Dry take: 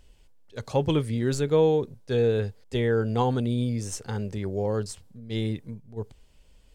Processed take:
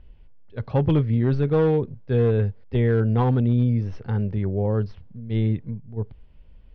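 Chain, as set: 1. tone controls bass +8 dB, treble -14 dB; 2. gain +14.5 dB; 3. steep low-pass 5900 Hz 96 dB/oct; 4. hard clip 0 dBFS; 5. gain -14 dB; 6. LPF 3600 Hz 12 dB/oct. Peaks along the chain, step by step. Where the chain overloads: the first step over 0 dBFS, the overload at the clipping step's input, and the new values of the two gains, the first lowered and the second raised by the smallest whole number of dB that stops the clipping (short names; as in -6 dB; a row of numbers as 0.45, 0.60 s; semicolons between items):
-9.5, +5.0, +5.0, 0.0, -14.0, -14.0 dBFS; step 2, 5.0 dB; step 2 +9.5 dB, step 5 -9 dB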